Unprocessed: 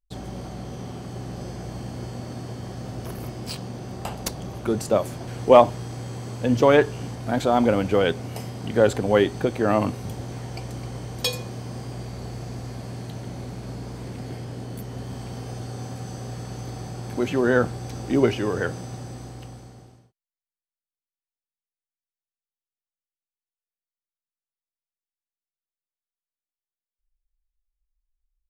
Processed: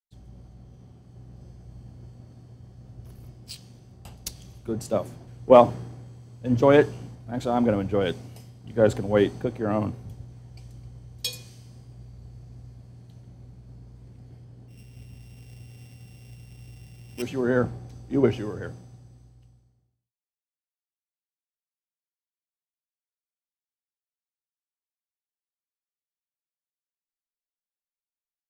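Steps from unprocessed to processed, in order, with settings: 14.68–17.22 s: sorted samples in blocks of 16 samples; bass shelf 390 Hz +7.5 dB; three bands expanded up and down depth 100%; trim -12 dB

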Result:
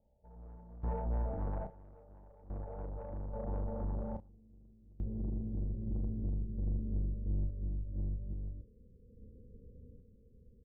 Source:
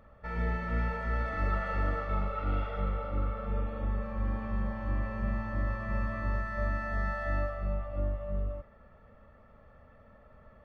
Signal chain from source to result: Chebyshev low-pass 910 Hz, order 8, from 4.28 s 500 Hz; saturation -33 dBFS, distortion -11 dB; random-step tremolo 1.2 Hz, depth 95%; doubling 33 ms -9.5 dB; trim +5 dB

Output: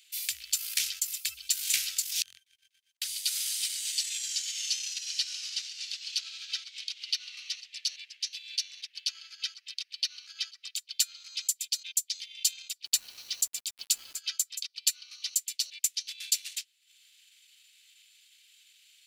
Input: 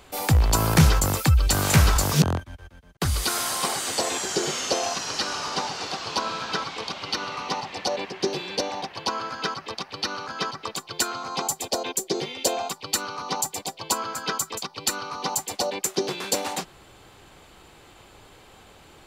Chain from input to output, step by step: transient shaper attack +2 dB, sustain -11 dB; inverse Chebyshev high-pass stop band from 1 kHz, stop band 50 dB; 12.85–14.18 s: word length cut 8-bit, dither none; trim -2.5 dB

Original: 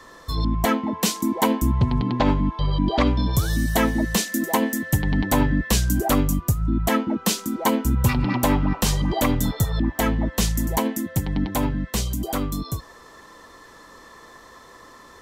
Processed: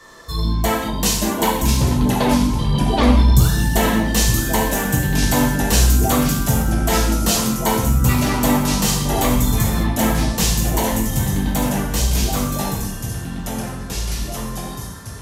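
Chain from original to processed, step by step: peaking EQ 8.8 kHz +4.5 dB 2.3 oct; gated-style reverb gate 250 ms falling, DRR -4 dB; 1.41–3.50 s: phaser 1.5 Hz, delay 4.4 ms, feedback 41%; ever faster or slower copies 499 ms, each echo -2 st, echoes 2, each echo -6 dB; trim -3 dB

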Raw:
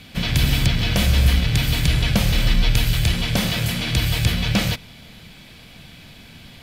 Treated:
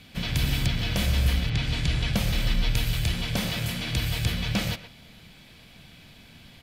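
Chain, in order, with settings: 1.49–2.12 s: low-pass 4.6 kHz -> 10 kHz 12 dB/octave; speakerphone echo 120 ms, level -11 dB; trim -7 dB

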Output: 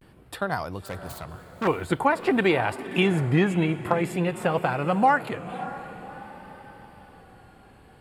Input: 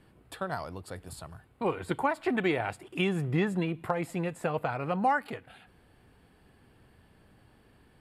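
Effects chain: 0.87–1.67 s: self-modulated delay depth 0.5 ms; on a send: echo that smears into a reverb 565 ms, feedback 49%, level -13.5 dB; on the sum: vibrato 0.49 Hz 70 cents; trim +6.5 dB

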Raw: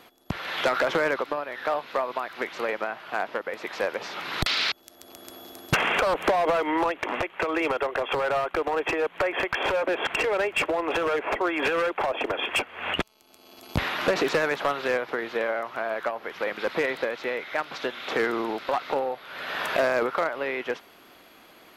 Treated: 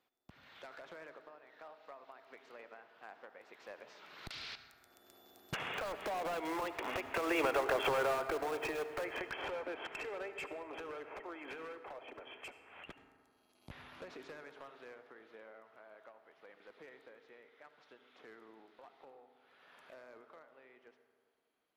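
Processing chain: Doppler pass-by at 7.66 s, 12 m/s, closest 5.1 m; in parallel at -11 dB: integer overflow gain 30 dB; on the sum: reverberation RT60 2.0 s, pre-delay 69 ms, DRR 9.5 dB; trim -5.5 dB

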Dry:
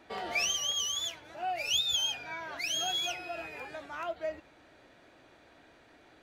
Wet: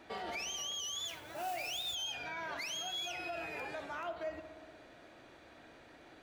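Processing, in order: compression, threshold -34 dBFS, peak gain reduction 9 dB; peak limiter -34 dBFS, peak gain reduction 8.5 dB; 1.07–1.95 s: modulation noise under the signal 13 dB; on a send: filtered feedback delay 60 ms, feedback 84%, low-pass 2.7 kHz, level -12 dB; on the sum: trim +1 dB

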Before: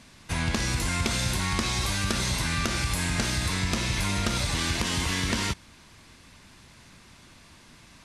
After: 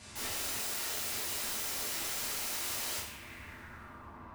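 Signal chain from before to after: treble shelf 9.4 kHz -4.5 dB; compression 10:1, threshold -32 dBFS, peak gain reduction 11 dB; short-mantissa float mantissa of 6-bit; low-pass sweep 9.1 kHz -> 1.1 kHz, 3.52–7.50 s; time stretch by phase-locked vocoder 0.54×; integer overflow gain 37 dB; two-slope reverb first 0.57 s, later 2.6 s, from -21 dB, DRR -6.5 dB; trim -2.5 dB

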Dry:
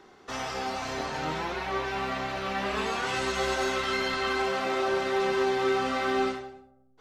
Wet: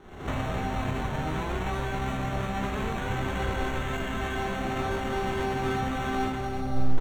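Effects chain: formants flattened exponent 0.6; recorder AGC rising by 68 dB/s; in parallel at -2.5 dB: peak limiter -24.5 dBFS, peak gain reduction 9.5 dB; on the sum: sample-and-hold 9×; RIAA curve playback; doubling 22 ms -8 dB; trim -7 dB

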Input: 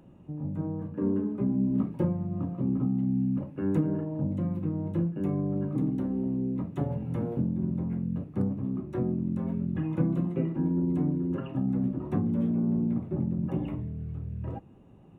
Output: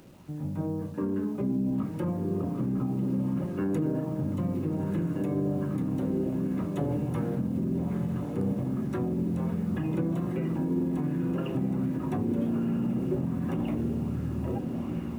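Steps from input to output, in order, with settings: treble shelf 2.4 kHz +11.5 dB; word length cut 10-bit, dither none; echo that smears into a reverb 1330 ms, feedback 60%, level -6 dB; peak limiter -21.5 dBFS, peak gain reduction 7.5 dB; sweeping bell 1.3 Hz 390–1700 Hz +6 dB

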